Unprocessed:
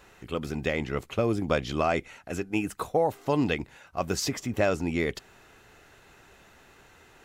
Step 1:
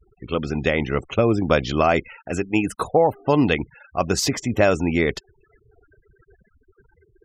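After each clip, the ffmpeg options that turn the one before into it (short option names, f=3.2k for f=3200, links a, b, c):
-af "afftfilt=real='re*gte(hypot(re,im),0.00708)':imag='im*gte(hypot(re,im),0.00708)':win_size=1024:overlap=0.75,volume=7.5dB"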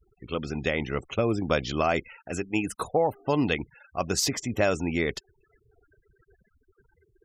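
-af "highshelf=f=3.8k:g=6.5,volume=-7dB"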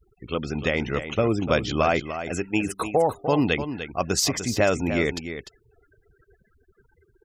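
-af "aecho=1:1:298:0.316,volume=3dB"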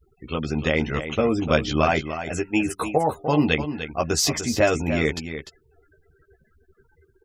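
-filter_complex "[0:a]asplit=2[a][b];[b]adelay=13,volume=-4dB[c];[a][c]amix=inputs=2:normalize=0"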